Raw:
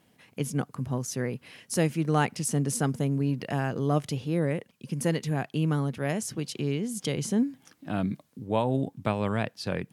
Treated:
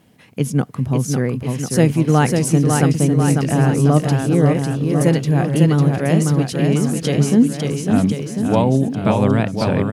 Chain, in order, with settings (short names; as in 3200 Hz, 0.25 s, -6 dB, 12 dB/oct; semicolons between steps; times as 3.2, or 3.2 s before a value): low shelf 430 Hz +6 dB; on a send: bouncing-ball echo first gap 0.55 s, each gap 0.9×, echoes 5; on the sum: gain +6.5 dB